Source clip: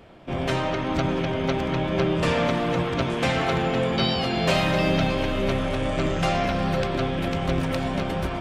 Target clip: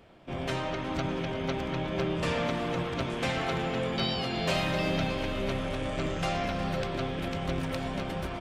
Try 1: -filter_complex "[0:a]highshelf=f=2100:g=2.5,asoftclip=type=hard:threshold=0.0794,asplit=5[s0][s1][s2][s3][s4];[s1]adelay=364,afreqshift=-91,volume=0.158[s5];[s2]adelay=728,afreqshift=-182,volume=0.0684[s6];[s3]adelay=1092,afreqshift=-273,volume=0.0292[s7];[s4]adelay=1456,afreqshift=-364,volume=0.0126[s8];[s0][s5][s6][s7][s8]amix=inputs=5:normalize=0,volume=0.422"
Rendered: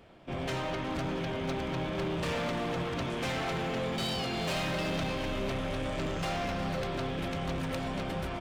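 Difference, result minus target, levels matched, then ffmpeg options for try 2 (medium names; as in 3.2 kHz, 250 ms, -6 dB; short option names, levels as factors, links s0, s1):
hard clipper: distortion +29 dB
-filter_complex "[0:a]highshelf=f=2100:g=2.5,asoftclip=type=hard:threshold=0.282,asplit=5[s0][s1][s2][s3][s4];[s1]adelay=364,afreqshift=-91,volume=0.158[s5];[s2]adelay=728,afreqshift=-182,volume=0.0684[s6];[s3]adelay=1092,afreqshift=-273,volume=0.0292[s7];[s4]adelay=1456,afreqshift=-364,volume=0.0126[s8];[s0][s5][s6][s7][s8]amix=inputs=5:normalize=0,volume=0.422"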